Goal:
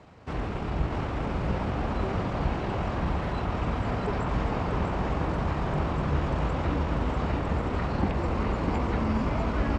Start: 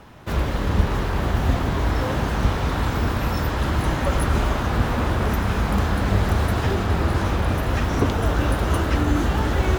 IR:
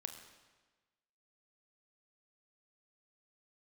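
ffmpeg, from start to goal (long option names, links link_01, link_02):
-filter_complex "[0:a]highpass=80,acrossover=split=4100[link_01][link_02];[link_02]acompressor=threshold=-47dB:ratio=4:attack=1:release=60[link_03];[link_01][link_03]amix=inputs=2:normalize=0,lowpass=frequency=10000:width=0.5412,lowpass=frequency=10000:width=1.3066,asetrate=33038,aresample=44100,atempo=1.33484,asplit=2[link_04][link_05];[link_05]aecho=0:1:647:0.596[link_06];[link_04][link_06]amix=inputs=2:normalize=0,volume=-5.5dB"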